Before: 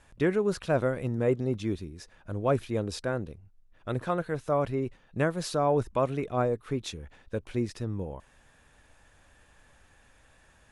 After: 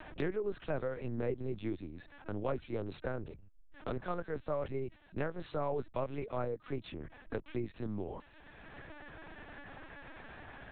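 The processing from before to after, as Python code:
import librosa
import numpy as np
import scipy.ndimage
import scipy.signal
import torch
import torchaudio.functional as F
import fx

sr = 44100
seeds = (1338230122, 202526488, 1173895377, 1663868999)

y = fx.lpc_vocoder(x, sr, seeds[0], excitation='pitch_kept', order=8)
y = fx.band_squash(y, sr, depth_pct=70)
y = y * librosa.db_to_amplitude(-8.0)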